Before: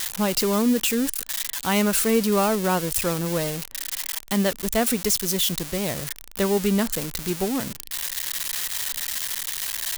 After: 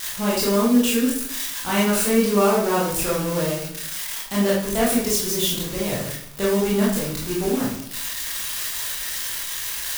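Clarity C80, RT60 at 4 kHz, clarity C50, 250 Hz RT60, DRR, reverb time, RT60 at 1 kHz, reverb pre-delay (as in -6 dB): 7.0 dB, 0.50 s, 2.5 dB, 0.70 s, -7.0 dB, 0.65 s, 0.60 s, 19 ms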